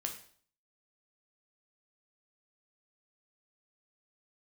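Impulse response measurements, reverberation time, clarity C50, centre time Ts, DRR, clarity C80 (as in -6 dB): 0.50 s, 8.5 dB, 17 ms, 2.5 dB, 12.5 dB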